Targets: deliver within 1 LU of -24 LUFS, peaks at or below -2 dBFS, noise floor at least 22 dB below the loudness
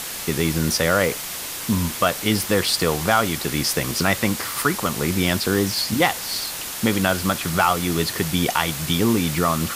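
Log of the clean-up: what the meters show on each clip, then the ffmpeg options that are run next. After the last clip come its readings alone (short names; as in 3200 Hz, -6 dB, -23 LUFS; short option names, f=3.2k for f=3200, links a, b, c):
noise floor -31 dBFS; noise floor target -43 dBFS; loudness -21.0 LUFS; peak -4.0 dBFS; loudness target -24.0 LUFS
-> -af "afftdn=nr=12:nf=-31"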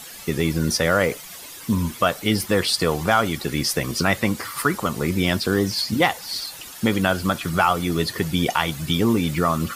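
noise floor -39 dBFS; noise floor target -44 dBFS
-> -af "afftdn=nr=6:nf=-39"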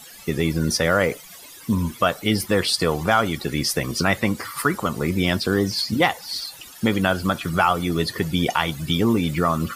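noise floor -43 dBFS; noise floor target -44 dBFS
-> -af "afftdn=nr=6:nf=-43"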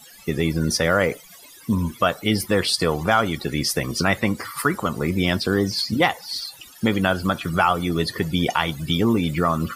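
noise floor -46 dBFS; loudness -22.0 LUFS; peak -4.0 dBFS; loudness target -24.0 LUFS
-> -af "volume=-2dB"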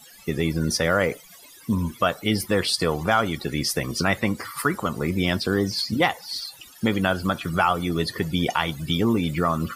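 loudness -24.0 LUFS; peak -6.0 dBFS; noise floor -48 dBFS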